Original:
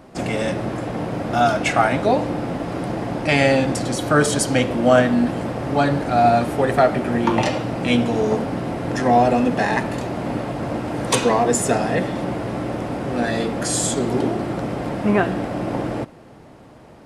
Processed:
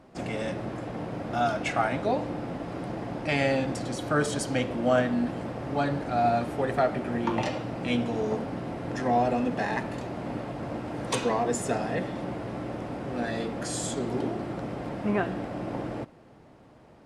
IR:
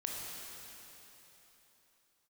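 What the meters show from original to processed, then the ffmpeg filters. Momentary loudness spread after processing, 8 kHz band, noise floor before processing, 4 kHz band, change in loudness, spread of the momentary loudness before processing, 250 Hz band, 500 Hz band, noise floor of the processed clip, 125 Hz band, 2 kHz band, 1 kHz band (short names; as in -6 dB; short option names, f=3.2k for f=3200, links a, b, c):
10 LU, -12.0 dB, -44 dBFS, -10.0 dB, -9.0 dB, 10 LU, -9.0 dB, -9.0 dB, -53 dBFS, -9.0 dB, -9.0 dB, -9.0 dB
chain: -af "highshelf=f=9.8k:g=-9,volume=-9dB"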